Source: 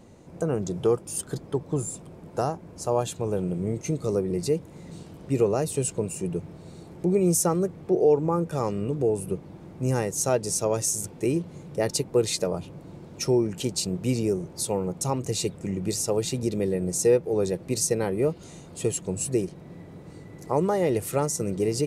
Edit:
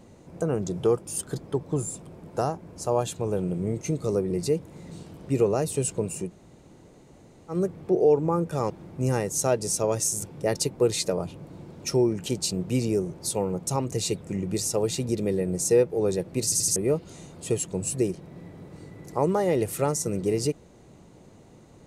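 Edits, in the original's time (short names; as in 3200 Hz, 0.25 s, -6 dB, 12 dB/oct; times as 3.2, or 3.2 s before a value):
6.27–7.53 room tone, crossfade 0.10 s
8.7–9.52 cut
11.17–11.69 cut
17.78 stutter in place 0.08 s, 4 plays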